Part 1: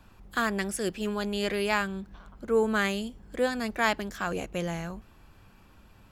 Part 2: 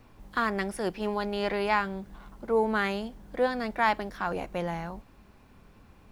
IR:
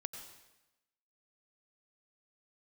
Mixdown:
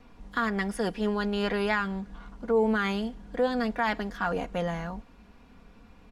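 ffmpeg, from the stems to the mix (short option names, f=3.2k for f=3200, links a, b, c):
-filter_complex "[0:a]volume=-16dB,asplit=2[a][b];[b]volume=-8dB[c];[1:a]lowpass=6.9k,adelay=0.7,volume=0.5dB[d];[2:a]atrim=start_sample=2205[e];[c][e]afir=irnorm=-1:irlink=0[f];[a][d][f]amix=inputs=3:normalize=0,aecho=1:1:4.2:0.51,alimiter=limit=-16dB:level=0:latency=1:release=103"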